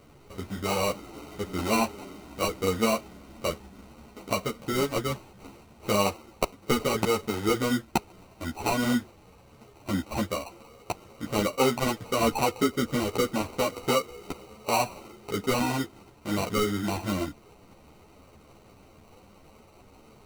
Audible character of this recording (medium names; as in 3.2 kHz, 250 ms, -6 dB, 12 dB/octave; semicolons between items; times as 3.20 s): aliases and images of a low sample rate 1.7 kHz, jitter 0%; a shimmering, thickened sound